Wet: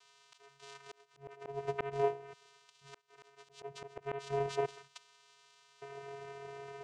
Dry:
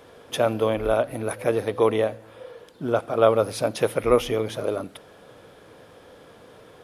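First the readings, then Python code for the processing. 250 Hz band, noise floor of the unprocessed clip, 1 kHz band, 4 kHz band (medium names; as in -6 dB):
-24.5 dB, -50 dBFS, -13.0 dB, -17.0 dB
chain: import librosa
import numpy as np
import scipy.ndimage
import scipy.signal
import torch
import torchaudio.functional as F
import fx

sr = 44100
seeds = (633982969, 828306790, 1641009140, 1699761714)

y = fx.filter_lfo_highpass(x, sr, shape='square', hz=0.43, low_hz=680.0, high_hz=3700.0, q=0.92)
y = fx.vocoder(y, sr, bands=4, carrier='square', carrier_hz=139.0)
y = fx.auto_swell(y, sr, attack_ms=746.0)
y = y * 10.0 ** (6.5 / 20.0)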